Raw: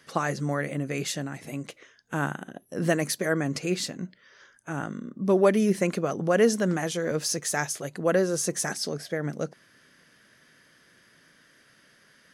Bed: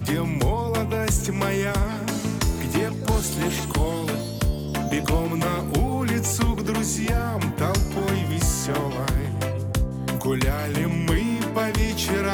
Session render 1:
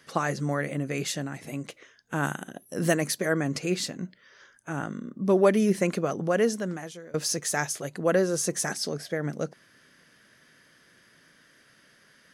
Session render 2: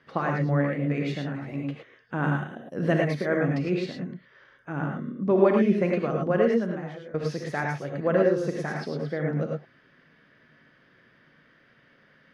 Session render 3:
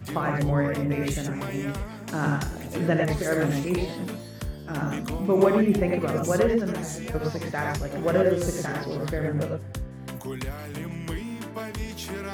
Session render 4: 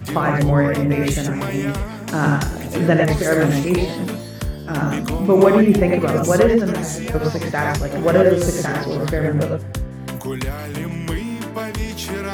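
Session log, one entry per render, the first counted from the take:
0:02.23–0:02.93: high-shelf EQ 3,500 Hz → 6,600 Hz +11 dB; 0:06.08–0:07.14: fade out, to −22.5 dB
high-frequency loss of the air 350 metres; reverb whose tail is shaped and stops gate 130 ms rising, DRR 0 dB
mix in bed −10.5 dB
level +8 dB; brickwall limiter −1 dBFS, peak gain reduction 2 dB

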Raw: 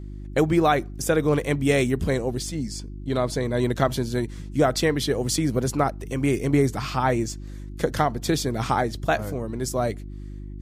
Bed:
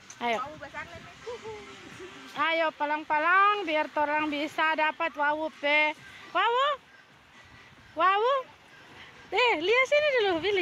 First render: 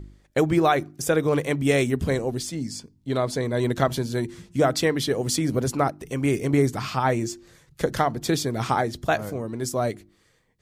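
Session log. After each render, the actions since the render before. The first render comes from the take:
hum removal 50 Hz, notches 7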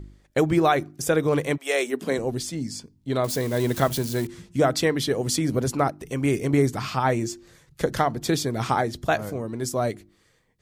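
0:01.56–0:02.17: high-pass filter 670 Hz → 170 Hz 24 dB per octave
0:03.24–0:04.27: spike at every zero crossing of −26 dBFS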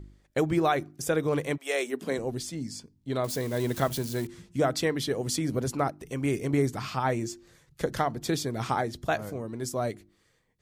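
level −5 dB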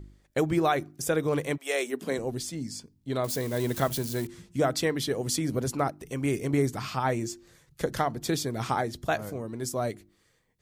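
high-shelf EQ 8,100 Hz +4 dB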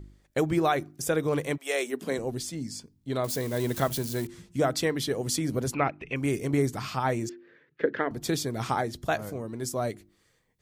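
0:05.74–0:06.16: low-pass with resonance 2,500 Hz, resonance Q 6.5
0:07.29–0:08.11: loudspeaker in its box 280–2,800 Hz, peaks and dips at 280 Hz +8 dB, 430 Hz +8 dB, 750 Hz −9 dB, 1,100 Hz −5 dB, 1,700 Hz +8 dB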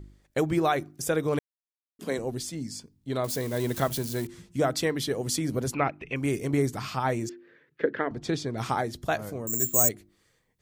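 0:01.39–0:01.99: silence
0:07.89–0:08.58: high-frequency loss of the air 99 metres
0:09.47–0:09.89: bad sample-rate conversion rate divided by 6×, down filtered, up zero stuff

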